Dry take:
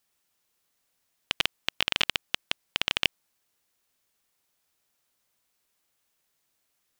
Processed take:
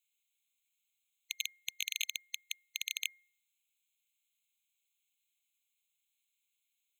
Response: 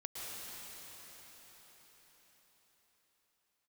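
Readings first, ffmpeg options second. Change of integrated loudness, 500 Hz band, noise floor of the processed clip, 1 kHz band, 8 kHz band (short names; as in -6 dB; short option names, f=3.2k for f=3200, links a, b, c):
-10.0 dB, under -40 dB, -84 dBFS, under -40 dB, +2.5 dB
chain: -af "aeval=exprs='abs(val(0))':c=same,bandreject=f=237.1:t=h:w=4,bandreject=f=474.2:t=h:w=4,bandreject=f=711.3:t=h:w=4,bandreject=f=948.4:t=h:w=4,bandreject=f=1.1855k:t=h:w=4,bandreject=f=1.4226k:t=h:w=4,bandreject=f=1.6597k:t=h:w=4,bandreject=f=1.8968k:t=h:w=4,bandreject=f=2.1339k:t=h:w=4,afftfilt=real='re*eq(mod(floor(b*sr/1024/2100),2),1)':imag='im*eq(mod(floor(b*sr/1024/2100),2),1)':win_size=1024:overlap=0.75"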